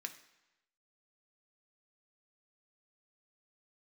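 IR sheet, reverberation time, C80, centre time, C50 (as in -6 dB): 1.0 s, 15.0 dB, 9 ms, 12.5 dB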